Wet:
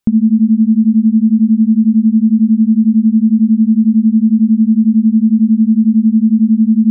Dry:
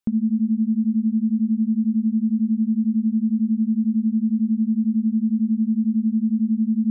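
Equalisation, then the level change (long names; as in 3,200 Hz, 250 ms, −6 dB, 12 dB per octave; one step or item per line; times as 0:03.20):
low-shelf EQ 190 Hz +6 dB
+8.0 dB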